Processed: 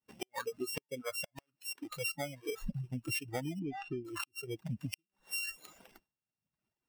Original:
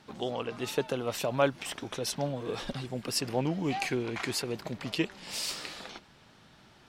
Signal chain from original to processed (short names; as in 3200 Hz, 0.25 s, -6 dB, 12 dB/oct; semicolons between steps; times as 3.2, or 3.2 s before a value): sample sorter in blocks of 16 samples; expander -46 dBFS; spectral noise reduction 21 dB; 1.02–2.61 low shelf 380 Hz -10 dB; compressor 12:1, threshold -43 dBFS, peak gain reduction 21.5 dB; 3.59–4.05 tape spacing loss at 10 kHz 34 dB; flipped gate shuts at -33 dBFS, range -36 dB; reverb removal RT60 1 s; gain +9.5 dB